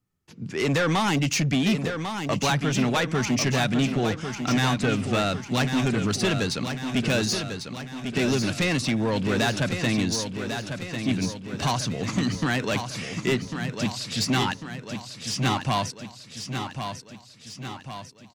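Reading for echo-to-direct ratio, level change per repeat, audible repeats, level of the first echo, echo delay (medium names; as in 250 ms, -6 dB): -6.0 dB, -5.5 dB, 6, -7.5 dB, 1097 ms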